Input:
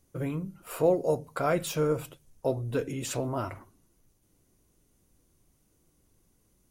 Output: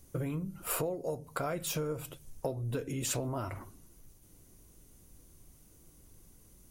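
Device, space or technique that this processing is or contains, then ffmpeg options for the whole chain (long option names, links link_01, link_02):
ASMR close-microphone chain: -af "lowshelf=frequency=110:gain=6,acompressor=threshold=-38dB:ratio=8,highshelf=frequency=6600:gain=6.5,volume=5.5dB"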